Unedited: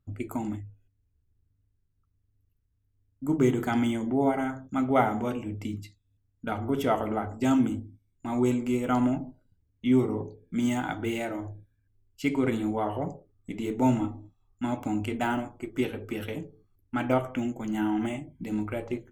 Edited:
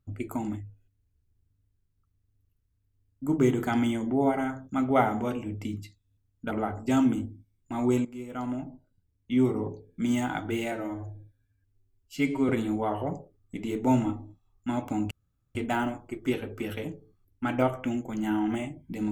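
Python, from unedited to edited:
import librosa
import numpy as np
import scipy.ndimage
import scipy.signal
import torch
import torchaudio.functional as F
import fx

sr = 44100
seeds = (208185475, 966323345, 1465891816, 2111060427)

y = fx.edit(x, sr, fx.cut(start_s=6.51, length_s=0.54),
    fx.fade_in_from(start_s=8.59, length_s=1.61, floor_db=-15.0),
    fx.stretch_span(start_s=11.26, length_s=1.18, factor=1.5),
    fx.insert_room_tone(at_s=15.06, length_s=0.44), tone=tone)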